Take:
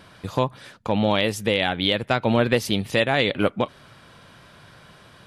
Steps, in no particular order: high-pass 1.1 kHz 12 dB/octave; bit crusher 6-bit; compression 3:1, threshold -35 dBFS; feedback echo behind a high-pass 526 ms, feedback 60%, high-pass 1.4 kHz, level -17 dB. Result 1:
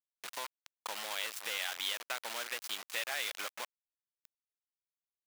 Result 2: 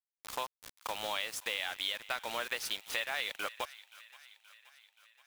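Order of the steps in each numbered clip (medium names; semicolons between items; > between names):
compression > feedback echo behind a high-pass > bit crusher > high-pass; high-pass > bit crusher > compression > feedback echo behind a high-pass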